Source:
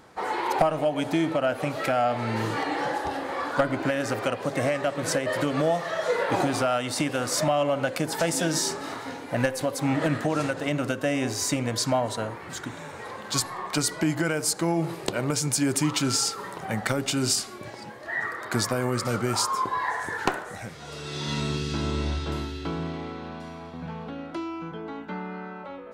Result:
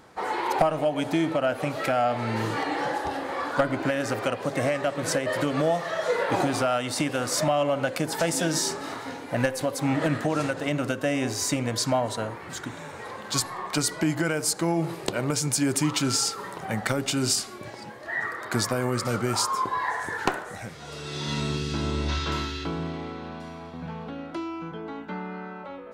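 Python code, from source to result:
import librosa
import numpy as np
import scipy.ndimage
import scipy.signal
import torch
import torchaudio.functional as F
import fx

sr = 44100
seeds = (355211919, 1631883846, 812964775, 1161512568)

y = fx.spec_box(x, sr, start_s=22.09, length_s=0.56, low_hz=910.0, high_hz=7500.0, gain_db=7)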